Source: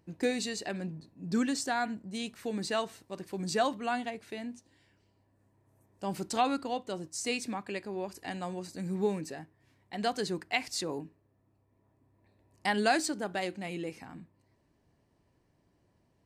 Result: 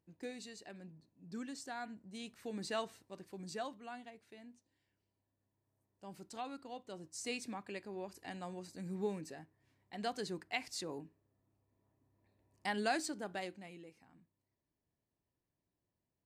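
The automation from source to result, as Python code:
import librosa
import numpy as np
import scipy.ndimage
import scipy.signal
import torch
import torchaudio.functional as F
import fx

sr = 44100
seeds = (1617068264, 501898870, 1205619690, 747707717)

y = fx.gain(x, sr, db=fx.line((1.39, -15.5), (2.81, -6.5), (3.87, -16.0), (6.52, -16.0), (7.22, -8.0), (13.39, -8.0), (13.9, -18.5)))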